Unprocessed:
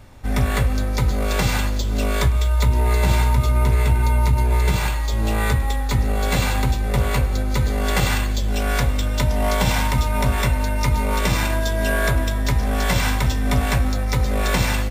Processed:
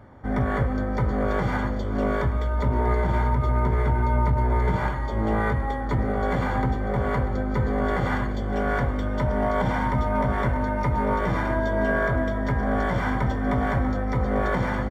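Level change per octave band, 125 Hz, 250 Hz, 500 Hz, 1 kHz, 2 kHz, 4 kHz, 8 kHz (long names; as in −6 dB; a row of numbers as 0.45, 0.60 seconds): −5.0 dB, 0.0 dB, +0.5 dB, −0.5 dB, −4.0 dB, −16.5 dB, below −20 dB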